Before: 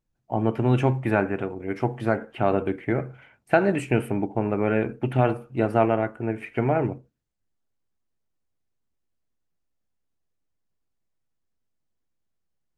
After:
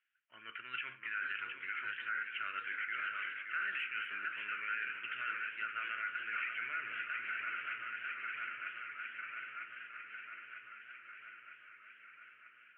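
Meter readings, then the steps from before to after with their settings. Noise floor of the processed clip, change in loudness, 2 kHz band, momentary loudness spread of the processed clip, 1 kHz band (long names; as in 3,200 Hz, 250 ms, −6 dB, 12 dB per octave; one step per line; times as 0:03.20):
−61 dBFS, −15.0 dB, −1.0 dB, 15 LU, −13.5 dB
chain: feedback echo with a long and a short gap by turns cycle 949 ms, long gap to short 3 to 1, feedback 63%, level −17.5 dB
reversed playback
downward compressor 4 to 1, threshold −33 dBFS, peak gain reduction 17 dB
reversed playback
elliptic band-pass filter 1,400–3,000 Hz, stop band 40 dB
brickwall limiter −43 dBFS, peak gain reduction 11 dB
feedback echo with a swinging delay time 574 ms, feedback 59%, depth 122 cents, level −7 dB
level +13.5 dB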